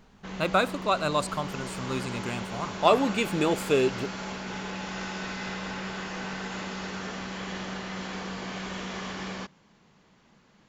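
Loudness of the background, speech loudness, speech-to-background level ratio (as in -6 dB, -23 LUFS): -35.5 LUFS, -27.5 LUFS, 8.0 dB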